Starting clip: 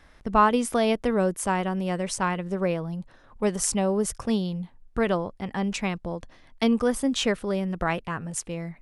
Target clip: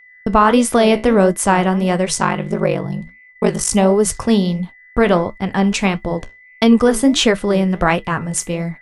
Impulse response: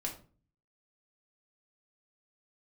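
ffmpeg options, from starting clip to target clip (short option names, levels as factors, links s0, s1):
-filter_complex "[0:a]agate=range=0.0178:threshold=0.01:ratio=16:detection=peak,asplit=3[s0][s1][s2];[s0]afade=t=out:st=2.17:d=0.02[s3];[s1]aeval=exprs='val(0)*sin(2*PI*24*n/s)':c=same,afade=t=in:st=2.17:d=0.02,afade=t=out:st=3.7:d=0.02[s4];[s2]afade=t=in:st=3.7:d=0.02[s5];[s3][s4][s5]amix=inputs=3:normalize=0,aeval=exprs='val(0)+0.002*sin(2*PI*2000*n/s)':c=same,flanger=delay=7.2:depth=8.9:regen=-67:speed=1.5:shape=sinusoidal,alimiter=level_in=6.68:limit=0.891:release=50:level=0:latency=1,volume=0.891"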